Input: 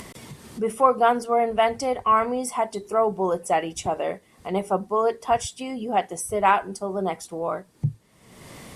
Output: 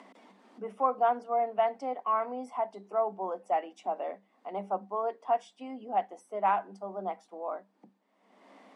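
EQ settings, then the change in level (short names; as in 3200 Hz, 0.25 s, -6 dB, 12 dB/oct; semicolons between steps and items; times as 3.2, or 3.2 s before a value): rippled Chebyshev high-pass 190 Hz, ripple 9 dB; air absorption 78 m; tone controls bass -6 dB, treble -7 dB; -5.0 dB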